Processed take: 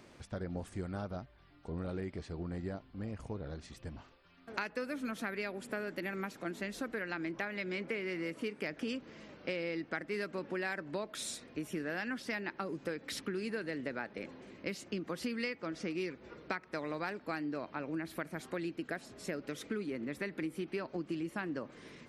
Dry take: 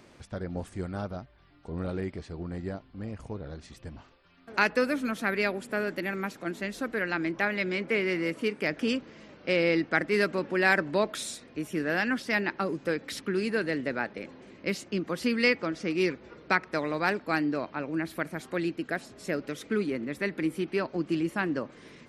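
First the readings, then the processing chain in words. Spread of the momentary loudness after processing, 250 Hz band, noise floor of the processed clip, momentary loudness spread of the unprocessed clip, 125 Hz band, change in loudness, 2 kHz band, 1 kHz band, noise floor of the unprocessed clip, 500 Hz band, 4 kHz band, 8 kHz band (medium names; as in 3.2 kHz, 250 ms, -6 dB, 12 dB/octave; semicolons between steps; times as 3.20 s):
6 LU, -8.5 dB, -60 dBFS, 13 LU, -7.0 dB, -10.0 dB, -11.0 dB, -10.5 dB, -55 dBFS, -9.5 dB, -9.0 dB, -5.0 dB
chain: compression, threshold -32 dBFS, peak gain reduction 13.5 dB; trim -2.5 dB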